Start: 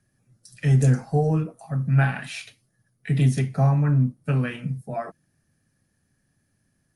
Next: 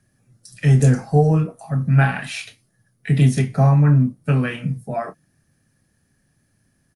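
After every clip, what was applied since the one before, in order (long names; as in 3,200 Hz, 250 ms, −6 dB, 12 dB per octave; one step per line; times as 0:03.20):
double-tracking delay 27 ms −11 dB
level +5 dB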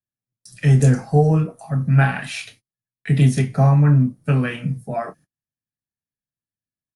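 noise gate −47 dBFS, range −34 dB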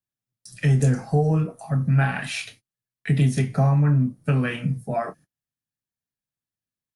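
downward compressor 2 to 1, threshold −19 dBFS, peak gain reduction 6 dB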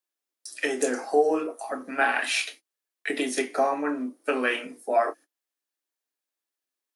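Butterworth high-pass 290 Hz 48 dB per octave
level +4 dB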